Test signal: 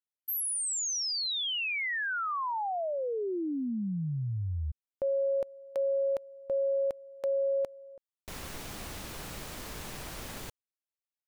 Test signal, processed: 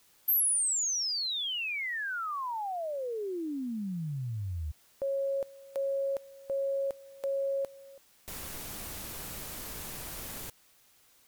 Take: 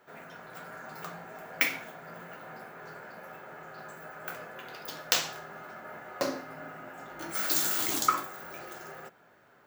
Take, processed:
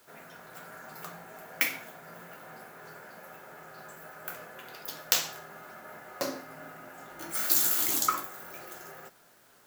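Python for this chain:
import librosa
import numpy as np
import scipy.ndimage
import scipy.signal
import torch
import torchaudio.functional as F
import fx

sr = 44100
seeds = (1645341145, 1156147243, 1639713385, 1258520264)

p1 = fx.peak_eq(x, sr, hz=15000.0, db=10.5, octaves=1.3)
p2 = fx.quant_dither(p1, sr, seeds[0], bits=8, dither='triangular')
p3 = p1 + F.gain(torch.from_numpy(p2), -10.5).numpy()
y = F.gain(torch.from_numpy(p3), -5.0).numpy()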